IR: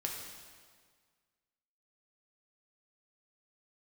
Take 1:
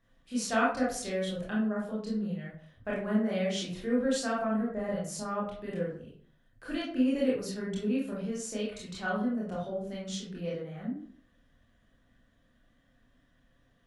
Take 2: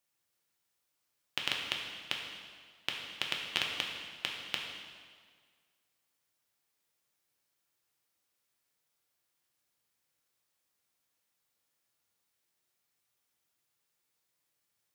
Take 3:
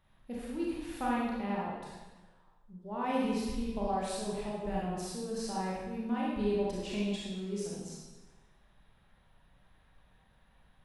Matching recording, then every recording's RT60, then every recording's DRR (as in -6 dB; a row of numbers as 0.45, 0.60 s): 2; 0.50, 1.7, 1.2 s; -6.0, -0.5, -6.0 dB